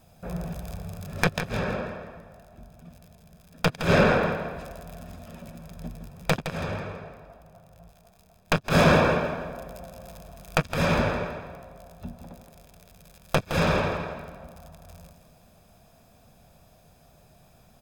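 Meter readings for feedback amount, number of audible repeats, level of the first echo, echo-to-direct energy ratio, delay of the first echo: 37%, 3, -9.5 dB, -9.0 dB, 0.164 s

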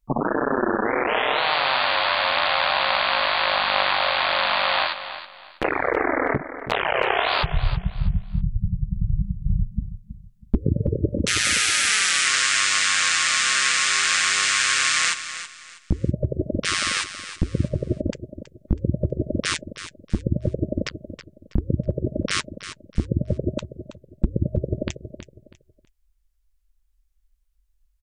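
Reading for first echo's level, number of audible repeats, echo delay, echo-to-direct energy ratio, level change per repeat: -12.0 dB, 3, 0.323 s, -11.5 dB, -11.0 dB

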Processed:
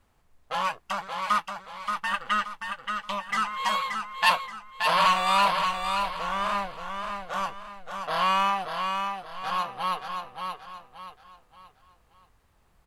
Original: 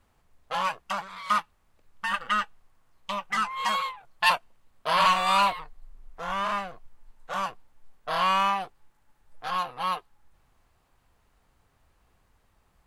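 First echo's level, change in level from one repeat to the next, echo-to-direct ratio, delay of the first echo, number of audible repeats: -5.5 dB, -9.0 dB, -5.0 dB, 0.577 s, 4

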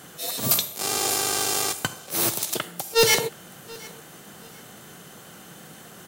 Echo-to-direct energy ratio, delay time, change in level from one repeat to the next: -22.5 dB, 0.726 s, -11.0 dB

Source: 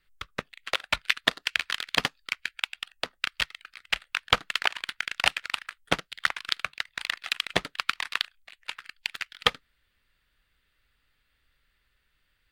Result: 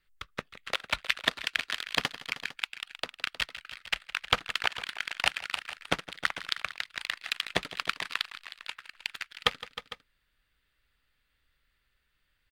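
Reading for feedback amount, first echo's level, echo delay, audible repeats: no steady repeat, -17.0 dB, 0.163 s, 3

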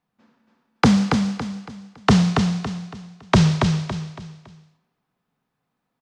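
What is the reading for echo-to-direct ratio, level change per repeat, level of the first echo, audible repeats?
-4.5 dB, -9.0 dB, -5.0 dB, 4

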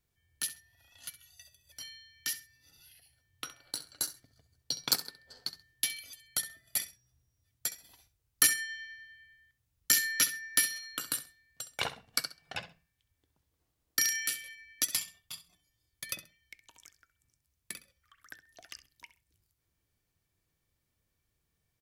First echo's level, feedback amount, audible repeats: -14.5 dB, 21%, 2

